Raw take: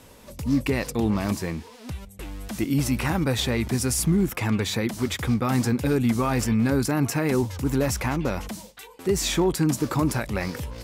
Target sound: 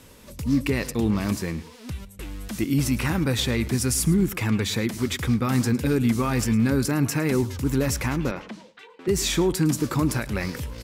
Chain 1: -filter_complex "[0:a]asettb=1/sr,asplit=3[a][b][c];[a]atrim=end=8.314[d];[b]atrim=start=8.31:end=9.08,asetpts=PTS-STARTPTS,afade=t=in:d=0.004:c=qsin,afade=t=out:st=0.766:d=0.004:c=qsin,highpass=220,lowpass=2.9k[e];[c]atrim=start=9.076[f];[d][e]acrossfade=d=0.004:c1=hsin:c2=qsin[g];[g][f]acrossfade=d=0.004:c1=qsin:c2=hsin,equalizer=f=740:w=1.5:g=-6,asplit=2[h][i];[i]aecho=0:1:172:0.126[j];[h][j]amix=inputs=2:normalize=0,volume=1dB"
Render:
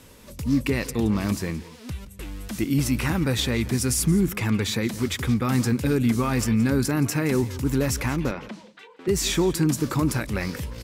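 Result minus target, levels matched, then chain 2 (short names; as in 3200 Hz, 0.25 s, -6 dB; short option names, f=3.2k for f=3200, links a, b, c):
echo 64 ms late
-filter_complex "[0:a]asettb=1/sr,asplit=3[a][b][c];[a]atrim=end=8.314[d];[b]atrim=start=8.31:end=9.08,asetpts=PTS-STARTPTS,afade=t=in:d=0.004:c=qsin,afade=t=out:st=0.766:d=0.004:c=qsin,highpass=220,lowpass=2.9k[e];[c]atrim=start=9.076[f];[d][e]acrossfade=d=0.004:c1=hsin:c2=qsin[g];[g][f]acrossfade=d=0.004:c1=qsin:c2=hsin,equalizer=f=740:w=1.5:g=-6,asplit=2[h][i];[i]aecho=0:1:108:0.126[j];[h][j]amix=inputs=2:normalize=0,volume=1dB"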